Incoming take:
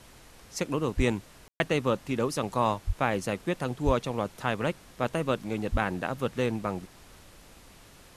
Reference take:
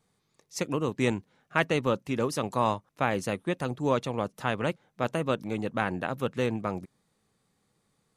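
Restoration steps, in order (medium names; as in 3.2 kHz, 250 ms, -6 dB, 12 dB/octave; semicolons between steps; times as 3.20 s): de-plosive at 0.96/2.86/3.85/5.71 s; room tone fill 1.48–1.60 s; noise print and reduce 21 dB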